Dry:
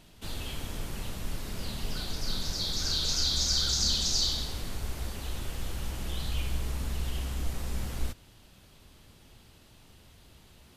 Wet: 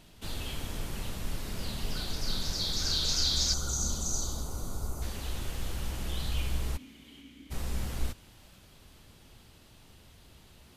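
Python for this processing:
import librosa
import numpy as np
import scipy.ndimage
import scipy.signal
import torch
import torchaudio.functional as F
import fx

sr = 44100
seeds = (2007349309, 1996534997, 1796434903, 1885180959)

y = fx.spec_box(x, sr, start_s=3.54, length_s=1.48, low_hz=1500.0, high_hz=5800.0, gain_db=-17)
y = fx.vowel_filter(y, sr, vowel='i', at=(6.76, 7.5), fade=0.02)
y = fx.echo_thinned(y, sr, ms=445, feedback_pct=61, hz=420.0, wet_db=-20.5)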